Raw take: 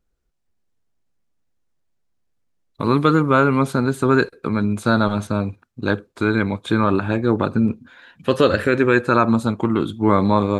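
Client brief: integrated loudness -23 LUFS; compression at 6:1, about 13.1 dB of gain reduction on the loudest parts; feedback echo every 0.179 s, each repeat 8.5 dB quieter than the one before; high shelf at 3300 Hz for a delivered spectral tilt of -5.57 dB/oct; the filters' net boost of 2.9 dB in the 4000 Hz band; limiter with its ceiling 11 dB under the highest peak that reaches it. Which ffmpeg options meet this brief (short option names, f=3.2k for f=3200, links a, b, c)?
-af "highshelf=f=3.3k:g=-8.5,equalizer=f=4k:t=o:g=8.5,acompressor=threshold=-25dB:ratio=6,alimiter=limit=-20.5dB:level=0:latency=1,aecho=1:1:179|358|537|716:0.376|0.143|0.0543|0.0206,volume=9dB"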